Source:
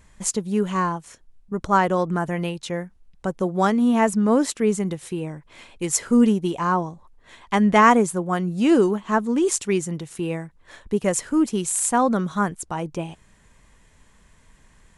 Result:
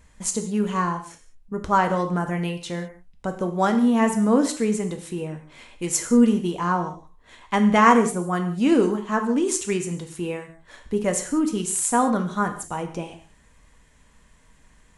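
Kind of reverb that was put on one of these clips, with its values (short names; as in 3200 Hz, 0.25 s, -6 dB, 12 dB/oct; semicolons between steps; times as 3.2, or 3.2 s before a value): non-linear reverb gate 0.22 s falling, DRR 5 dB; gain -2 dB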